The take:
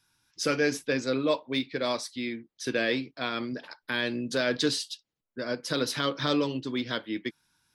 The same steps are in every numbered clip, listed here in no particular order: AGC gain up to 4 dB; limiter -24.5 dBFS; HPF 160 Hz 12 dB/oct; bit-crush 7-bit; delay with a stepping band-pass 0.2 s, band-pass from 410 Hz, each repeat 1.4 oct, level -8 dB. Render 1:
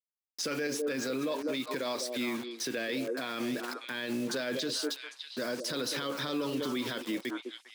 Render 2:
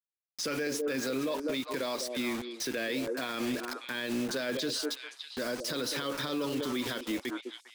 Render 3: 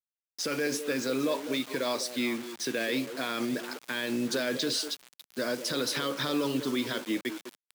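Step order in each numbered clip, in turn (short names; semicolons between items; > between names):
AGC > bit-crush > delay with a stepping band-pass > limiter > HPF; HPF > bit-crush > delay with a stepping band-pass > AGC > limiter; limiter > delay with a stepping band-pass > AGC > bit-crush > HPF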